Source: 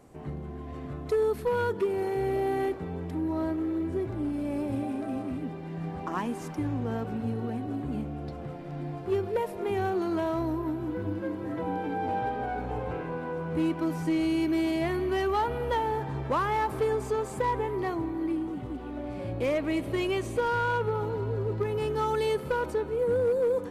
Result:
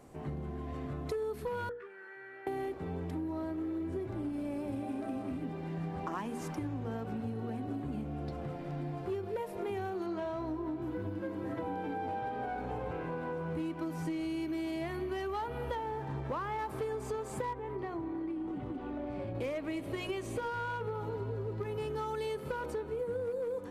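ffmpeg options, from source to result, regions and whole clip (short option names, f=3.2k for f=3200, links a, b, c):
-filter_complex "[0:a]asettb=1/sr,asplit=3[a][b][c];[a]atrim=end=1.694[d];[b]atrim=start=1.69:end=2.47,asetpts=PTS-STARTPTS,afade=t=in:d=0.004:c=qsin,afade=t=out:st=0.776:d=0.004:c=qsin,bandpass=f=1.6k:t=q:w=6.7,asplit=2[e][f];[f]adelay=15,volume=-2.5dB[g];[e][g]amix=inputs=2:normalize=0,atrim=end_sample=34398[h];[c]atrim=start=2.466[i];[d][h]acrossfade=d=0.004:c1=hsin:c2=qsin[j];[j][i]acrossfade=d=0.004:c1=qsin:c2=hsin,asettb=1/sr,asplit=3[k][l][m];[k]atrim=end=10.064[n];[l]atrim=start=10.06:end=10.82,asetpts=PTS-STARTPTS,afade=t=in:d=0.004:c=qsin,afade=t=out:st=0.756:d=0.004:c=qsin,adynamicsmooth=sensitivity=6:basefreq=6.9k,asplit=2[o][p];[p]adelay=26,volume=-6.5dB[q];[o][q]amix=inputs=2:normalize=0,atrim=end_sample=33516[r];[m]atrim=start=10.816[s];[n][r]acrossfade=d=0.004:c1=hsin:c2=qsin[t];[t][s]acrossfade=d=0.004:c1=qsin:c2=hsin,asettb=1/sr,asplit=3[u][v][w];[u]atrim=end=15.754[x];[v]atrim=start=15.75:end=16.59,asetpts=PTS-STARTPTS,afade=t=in:d=0.004:c=qsin,afade=t=out:st=0.836:d=0.004:c=qsin,lowpass=f=3.6k:p=1,aeval=exprs='sgn(val(0))*max(abs(val(0))-0.00158,0)':c=same[y];[w]atrim=start=16.586[z];[x][y]acrossfade=d=0.004:c1=hsin:c2=qsin[aa];[aa][z]acrossfade=d=0.004:c1=qsin:c2=hsin,asettb=1/sr,asplit=3[ab][ac][ad];[ab]atrim=end=17.534[ae];[ac]atrim=start=17.53:end=19.35,asetpts=PTS-STARTPTS,afade=t=in:d=0.004:c=qsin,afade=t=out:st=1.816:d=0.004:c=qsin,lowpass=f=2.6k:p=1,acompressor=threshold=-32dB:ratio=5:attack=3.2:release=140:knee=1:detection=peak[af];[ad]atrim=start=19.346[ag];[ae][af]acrossfade=d=0.004:c1=hsin:c2=qsin[ah];[ah][ag]acrossfade=d=0.004:c1=qsin:c2=hsin,bandreject=f=60:t=h:w=6,bandreject=f=120:t=h:w=6,bandreject=f=180:t=h:w=6,bandreject=f=240:t=h:w=6,bandreject=f=300:t=h:w=6,bandreject=f=360:t=h:w=6,bandreject=f=420:t=h:w=6,bandreject=f=480:t=h:w=6,acompressor=threshold=-34dB:ratio=6"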